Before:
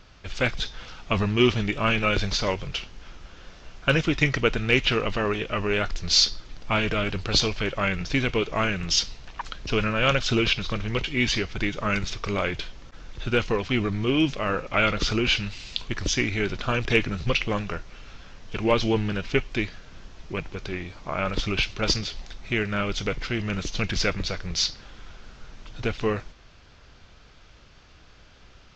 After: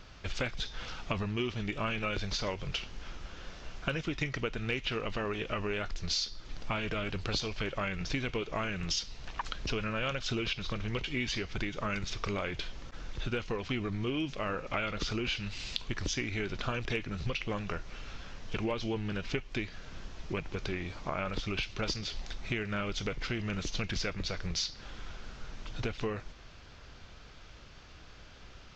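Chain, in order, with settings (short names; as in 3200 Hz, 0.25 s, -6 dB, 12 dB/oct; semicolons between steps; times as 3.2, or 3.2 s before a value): compressor 6:1, threshold -31 dBFS, peak gain reduction 16 dB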